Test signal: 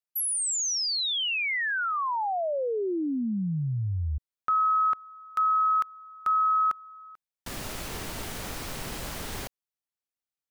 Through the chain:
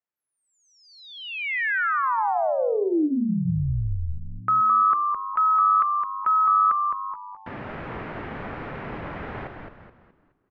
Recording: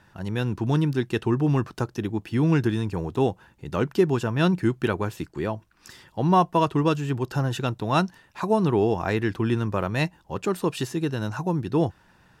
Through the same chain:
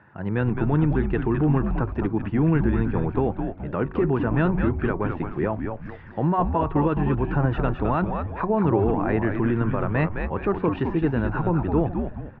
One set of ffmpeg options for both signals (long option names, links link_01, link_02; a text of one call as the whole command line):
ffmpeg -i in.wav -filter_complex "[0:a]lowpass=frequency=2100:width=0.5412,lowpass=frequency=2100:width=1.3066,alimiter=limit=-17.5dB:level=0:latency=1:release=57,highpass=97,bandreject=frequency=187.3:width_type=h:width=4,bandreject=frequency=374.6:width_type=h:width=4,bandreject=frequency=561.9:width_type=h:width=4,bandreject=frequency=749.2:width_type=h:width=4,bandreject=frequency=936.5:width_type=h:width=4,bandreject=frequency=1123.8:width_type=h:width=4,asplit=6[link_01][link_02][link_03][link_04][link_05][link_06];[link_02]adelay=212,afreqshift=-100,volume=-5dB[link_07];[link_03]adelay=424,afreqshift=-200,volume=-13dB[link_08];[link_04]adelay=636,afreqshift=-300,volume=-20.9dB[link_09];[link_05]adelay=848,afreqshift=-400,volume=-28.9dB[link_10];[link_06]adelay=1060,afreqshift=-500,volume=-36.8dB[link_11];[link_01][link_07][link_08][link_09][link_10][link_11]amix=inputs=6:normalize=0,volume=4dB" out.wav